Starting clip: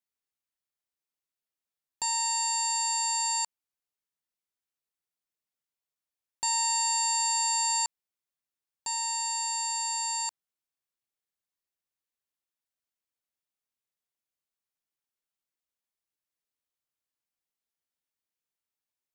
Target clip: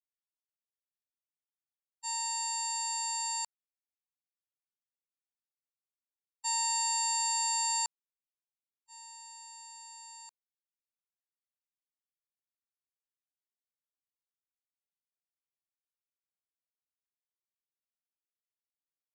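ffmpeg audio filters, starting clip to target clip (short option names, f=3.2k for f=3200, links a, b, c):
-af "agate=range=-58dB:threshold=-28dB:ratio=16:detection=peak,volume=-3.5dB"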